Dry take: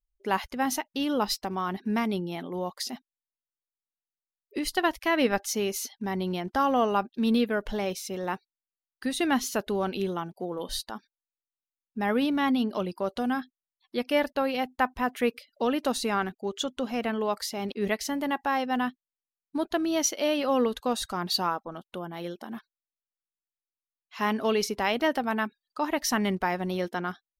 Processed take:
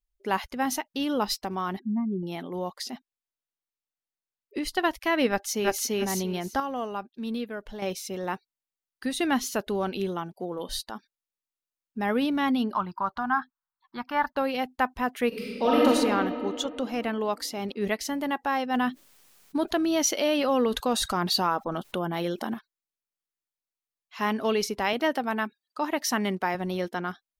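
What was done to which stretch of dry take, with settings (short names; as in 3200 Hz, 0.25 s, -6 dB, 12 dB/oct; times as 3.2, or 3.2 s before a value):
1.79–2.23 spectral contrast raised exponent 3
2.73–4.8 high shelf 6000 Hz -5 dB
5.3–5.89 echo throw 0.34 s, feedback 20%, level 0 dB
6.6–7.82 gain -8 dB
12.73–14.37 EQ curve 150 Hz 0 dB, 350 Hz -9 dB, 500 Hz -18 dB, 920 Hz +12 dB, 1500 Hz +9 dB, 2500 Hz -10 dB, 4400 Hz -7 dB, 10000 Hz -21 dB, 15000 Hz -1 dB
15.28–15.86 reverb throw, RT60 2.7 s, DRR -7.5 dB
18.74–22.54 fast leveller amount 50%
24.93–26.55 HPF 160 Hz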